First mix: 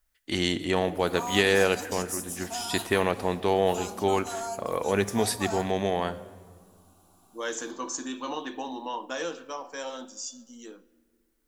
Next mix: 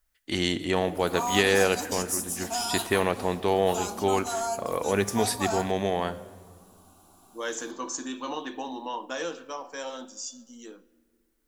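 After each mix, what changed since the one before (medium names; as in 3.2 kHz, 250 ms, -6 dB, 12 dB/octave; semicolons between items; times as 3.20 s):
background +4.5 dB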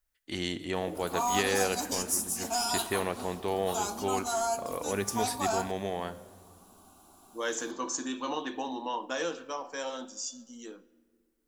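first voice -7.0 dB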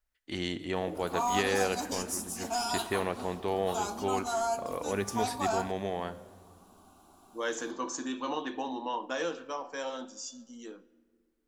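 master: add treble shelf 6.1 kHz -9 dB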